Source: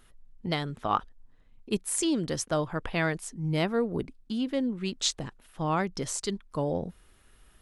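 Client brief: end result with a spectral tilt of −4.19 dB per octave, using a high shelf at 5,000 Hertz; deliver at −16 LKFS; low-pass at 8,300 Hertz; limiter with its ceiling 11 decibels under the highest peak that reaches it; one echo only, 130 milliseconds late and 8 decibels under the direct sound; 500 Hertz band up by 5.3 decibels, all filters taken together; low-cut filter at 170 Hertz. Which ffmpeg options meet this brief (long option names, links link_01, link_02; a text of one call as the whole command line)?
ffmpeg -i in.wav -af "highpass=170,lowpass=8300,equalizer=frequency=500:width_type=o:gain=6.5,highshelf=frequency=5000:gain=3.5,alimiter=limit=-18dB:level=0:latency=1,aecho=1:1:130:0.398,volume=14dB" out.wav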